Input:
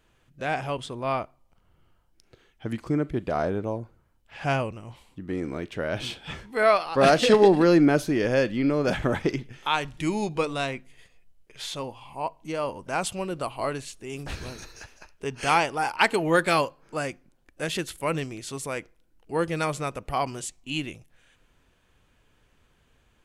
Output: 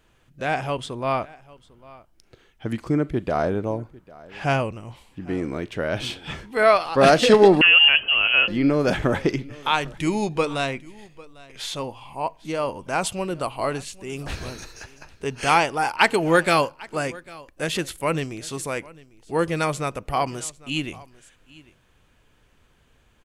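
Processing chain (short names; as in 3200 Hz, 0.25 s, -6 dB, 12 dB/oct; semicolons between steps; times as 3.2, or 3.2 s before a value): echo 0.799 s -22 dB; 7.61–8.48 inverted band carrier 3100 Hz; gain +3.5 dB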